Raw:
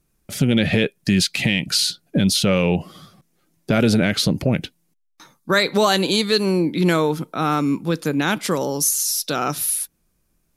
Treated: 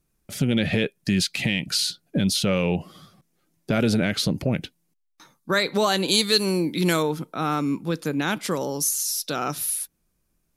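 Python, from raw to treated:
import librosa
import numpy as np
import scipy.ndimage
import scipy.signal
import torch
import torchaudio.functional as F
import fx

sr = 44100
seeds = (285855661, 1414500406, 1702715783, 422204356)

y = fx.high_shelf(x, sr, hz=4000.0, db=11.5, at=(6.08, 7.03))
y = F.gain(torch.from_numpy(y), -4.5).numpy()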